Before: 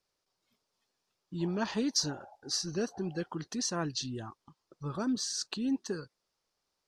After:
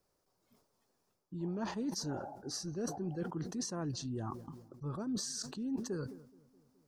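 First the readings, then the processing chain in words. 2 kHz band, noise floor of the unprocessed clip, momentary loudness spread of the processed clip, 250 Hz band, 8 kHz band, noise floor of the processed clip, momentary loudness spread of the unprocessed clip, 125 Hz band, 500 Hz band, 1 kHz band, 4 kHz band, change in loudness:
−9.0 dB, −84 dBFS, 8 LU, −4.0 dB, −6.0 dB, −79 dBFS, 12 LU, −1.0 dB, −4.0 dB, −3.5 dB, −9.0 dB, −5.5 dB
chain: parametric band 3,300 Hz −14 dB 2.5 octaves
reversed playback
downward compressor 4 to 1, threshold −47 dBFS, peak gain reduction 16 dB
reversed playback
feedback echo with a low-pass in the loop 211 ms, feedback 67%, low-pass 1,000 Hz, level −23 dB
level that may fall only so fast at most 88 dB per second
level +9 dB

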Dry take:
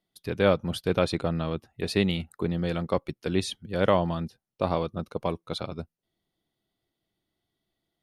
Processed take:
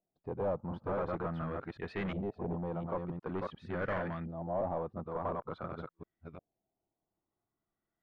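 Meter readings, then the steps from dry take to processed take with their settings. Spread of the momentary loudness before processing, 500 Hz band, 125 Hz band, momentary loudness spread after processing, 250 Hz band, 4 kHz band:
11 LU, −9.0 dB, −9.5 dB, 10 LU, −10.0 dB, −23.0 dB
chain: delay that plays each chunk backwards 355 ms, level −4 dB
hard clipping −24 dBFS, distortion −6 dB
auto-filter low-pass saw up 0.47 Hz 650–2,000 Hz
level −9 dB

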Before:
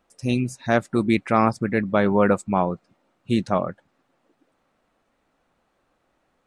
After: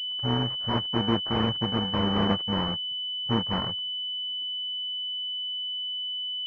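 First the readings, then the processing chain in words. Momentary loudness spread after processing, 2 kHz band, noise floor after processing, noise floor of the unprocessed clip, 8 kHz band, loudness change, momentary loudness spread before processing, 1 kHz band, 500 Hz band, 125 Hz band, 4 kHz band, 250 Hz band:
4 LU, −9.0 dB, −32 dBFS, −70 dBFS, below −15 dB, −5.0 dB, 7 LU, −7.0 dB, −10.0 dB, −2.5 dB, +18.5 dB, −6.0 dB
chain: samples in bit-reversed order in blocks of 64 samples
high-pass filter sweep 63 Hz → 520 Hz, 0:03.44–0:05.67
switching amplifier with a slow clock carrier 3,000 Hz
level −4 dB

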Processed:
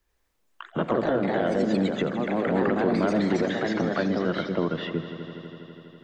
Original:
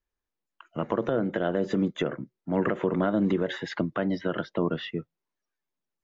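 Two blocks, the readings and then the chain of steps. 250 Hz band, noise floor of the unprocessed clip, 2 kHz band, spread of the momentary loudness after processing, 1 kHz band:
+3.0 dB, below −85 dBFS, +4.0 dB, 14 LU, +4.5 dB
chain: echo machine with several playback heads 82 ms, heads all three, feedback 64%, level −17 dB
delay with pitch and tempo change per echo 84 ms, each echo +2 semitones, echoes 2
multiband upward and downward compressor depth 40%

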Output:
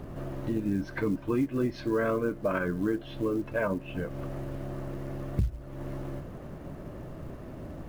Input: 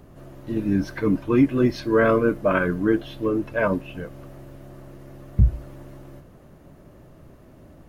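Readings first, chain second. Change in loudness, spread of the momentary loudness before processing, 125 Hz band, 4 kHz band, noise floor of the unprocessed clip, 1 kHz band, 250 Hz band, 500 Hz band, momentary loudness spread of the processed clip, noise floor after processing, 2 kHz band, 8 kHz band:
−10.0 dB, 15 LU, −7.0 dB, −7.5 dB, −49 dBFS, −8.0 dB, −7.5 dB, −8.0 dB, 14 LU, −44 dBFS, −8.5 dB, can't be measured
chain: high-shelf EQ 5,100 Hz −11.5 dB
downward compressor 3 to 1, threshold −38 dBFS, peak gain reduction 19.5 dB
floating-point word with a short mantissa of 4 bits
level +7 dB

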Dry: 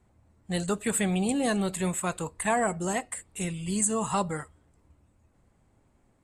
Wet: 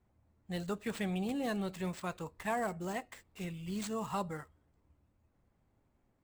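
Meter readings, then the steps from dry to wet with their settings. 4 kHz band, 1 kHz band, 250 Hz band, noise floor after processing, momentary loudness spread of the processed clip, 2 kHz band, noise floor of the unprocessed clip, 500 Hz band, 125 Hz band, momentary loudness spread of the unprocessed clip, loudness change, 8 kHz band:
−8.5 dB, −8.5 dB, −8.5 dB, −75 dBFS, 9 LU, −9.0 dB, −66 dBFS, −8.5 dB, −8.5 dB, 8 LU, −9.5 dB, −20.0 dB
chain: running median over 5 samples
level −8.5 dB

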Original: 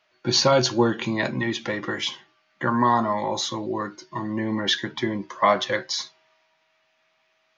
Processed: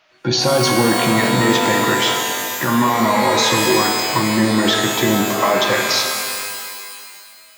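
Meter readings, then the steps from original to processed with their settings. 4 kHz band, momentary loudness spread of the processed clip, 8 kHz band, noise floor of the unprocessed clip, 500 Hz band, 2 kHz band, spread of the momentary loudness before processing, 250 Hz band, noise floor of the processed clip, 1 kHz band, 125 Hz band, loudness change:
+8.5 dB, 8 LU, can't be measured, −68 dBFS, +7.0 dB, +10.5 dB, 11 LU, +8.5 dB, −44 dBFS, +7.0 dB, +8.0 dB, +8.0 dB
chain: in parallel at −3 dB: compressor whose output falls as the input rises −27 dBFS
on the sum: brickwall limiter −12.5 dBFS, peak gain reduction 6.5 dB
reverb with rising layers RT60 2.1 s, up +12 semitones, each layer −2 dB, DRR 3 dB
level +3.5 dB

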